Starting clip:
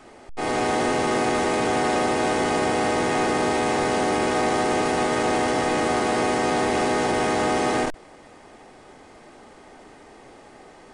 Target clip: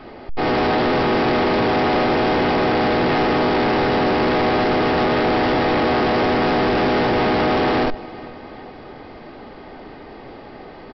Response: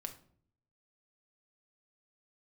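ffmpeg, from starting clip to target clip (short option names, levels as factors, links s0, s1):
-af "lowshelf=f=450:g=5.5,aecho=1:1:397|794|1191|1588:0.0668|0.0368|0.0202|0.0111,aresample=11025,asoftclip=type=hard:threshold=0.0794,aresample=44100,volume=2.11"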